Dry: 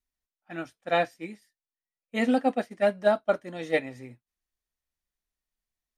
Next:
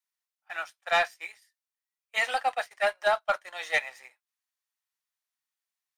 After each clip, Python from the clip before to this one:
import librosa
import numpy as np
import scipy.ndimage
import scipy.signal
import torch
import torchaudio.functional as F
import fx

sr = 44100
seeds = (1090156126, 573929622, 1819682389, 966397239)

y = scipy.signal.sosfilt(scipy.signal.cheby2(4, 70, 180.0, 'highpass', fs=sr, output='sos'), x)
y = fx.leveller(y, sr, passes=1)
y = y * librosa.db_to_amplitude(3.0)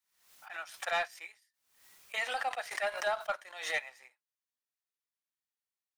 y = fx.pre_swell(x, sr, db_per_s=86.0)
y = y * librosa.db_to_amplitude(-8.0)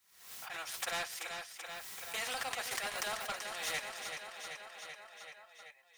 y = fx.notch_comb(x, sr, f0_hz=300.0)
y = fx.echo_feedback(y, sr, ms=384, feedback_pct=57, wet_db=-12)
y = fx.spectral_comp(y, sr, ratio=2.0)
y = y * librosa.db_to_amplitude(3.0)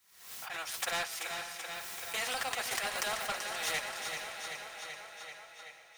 y = fx.echo_diffused(x, sr, ms=487, feedback_pct=41, wet_db=-10)
y = y * librosa.db_to_amplitude(3.0)